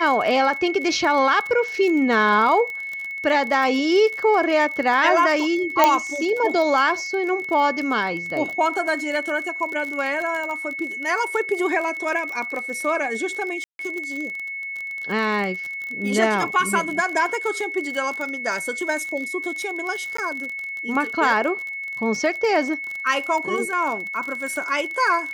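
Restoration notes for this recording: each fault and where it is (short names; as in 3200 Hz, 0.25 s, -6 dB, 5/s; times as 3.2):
crackle 34/s -26 dBFS
tone 2200 Hz -28 dBFS
5.84 pop 0 dBFS
13.64–13.79 gap 0.152 s
20.17–20.18 gap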